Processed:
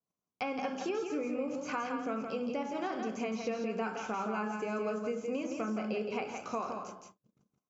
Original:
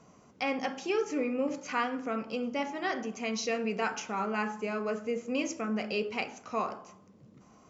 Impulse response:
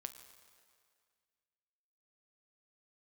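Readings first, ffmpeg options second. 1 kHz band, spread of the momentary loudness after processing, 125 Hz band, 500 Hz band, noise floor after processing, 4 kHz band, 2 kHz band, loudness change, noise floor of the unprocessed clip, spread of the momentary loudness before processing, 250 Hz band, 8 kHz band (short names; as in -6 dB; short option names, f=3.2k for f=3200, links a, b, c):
-2.5 dB, 3 LU, -1.5 dB, -2.5 dB, under -85 dBFS, -8.0 dB, -6.0 dB, -3.0 dB, -59 dBFS, 4 LU, -2.0 dB, n/a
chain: -filter_complex "[0:a]bandreject=f=50:t=h:w=6,bandreject=f=100:t=h:w=6,bandreject=f=150:t=h:w=6,bandreject=f=200:t=h:w=6,bandreject=f=250:t=h:w=6,agate=range=-40dB:threshold=-52dB:ratio=16:detection=peak,highshelf=f=6.2k:g=7,bandreject=f=1.9k:w=5.8,acrossover=split=2400[a][b];[b]alimiter=level_in=17.5dB:limit=-24dB:level=0:latency=1:release=24,volume=-17.5dB[c];[a][c]amix=inputs=2:normalize=0,acompressor=threshold=-36dB:ratio=6,aecho=1:1:168:0.531,adynamicequalizer=threshold=0.002:dfrequency=2200:dqfactor=0.7:tfrequency=2200:tqfactor=0.7:attack=5:release=100:ratio=0.375:range=2:mode=cutabove:tftype=highshelf,volume=3.5dB"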